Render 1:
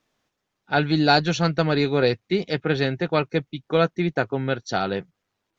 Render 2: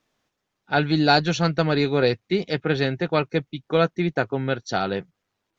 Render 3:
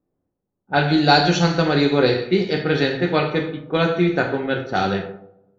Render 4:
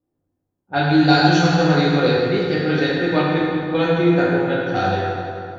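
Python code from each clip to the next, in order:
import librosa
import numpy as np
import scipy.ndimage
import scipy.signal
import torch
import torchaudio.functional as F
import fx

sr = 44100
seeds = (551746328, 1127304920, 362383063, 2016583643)

y1 = x
y2 = fx.rev_double_slope(y1, sr, seeds[0], early_s=0.63, late_s=1.6, knee_db=-18, drr_db=1.0)
y2 = fx.env_lowpass(y2, sr, base_hz=440.0, full_db=-16.0)
y2 = y2 * 10.0 ** (1.5 / 20.0)
y3 = fx.rev_fdn(y2, sr, rt60_s=2.7, lf_ratio=1.0, hf_ratio=0.65, size_ms=58.0, drr_db=-4.5)
y3 = y3 * 10.0 ** (-5.5 / 20.0)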